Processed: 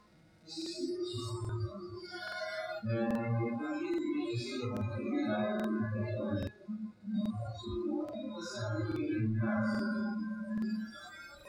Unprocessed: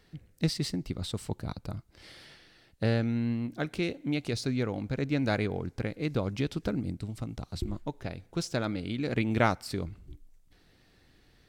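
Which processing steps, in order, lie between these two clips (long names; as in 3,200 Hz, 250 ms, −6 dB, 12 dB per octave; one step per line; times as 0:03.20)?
compressor on every frequency bin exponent 0.4
convolution reverb RT60 2.9 s, pre-delay 5 ms, DRR −4.5 dB
leveller curve on the samples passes 2
brickwall limiter −18.5 dBFS, peak gain reduction 14.5 dB
harmonic and percussive parts rebalanced percussive −18 dB
0:06.46–0:07.14: tuned comb filter 210 Hz, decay 0.24 s, harmonics all, mix 50%
feedback delay with all-pass diffusion 1,212 ms, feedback 66%, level −10.5 dB
noise reduction from a noise print of the clip's start 28 dB
regular buffer underruns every 0.83 s, samples 2,048, repeat, from 0:00.57
level −5 dB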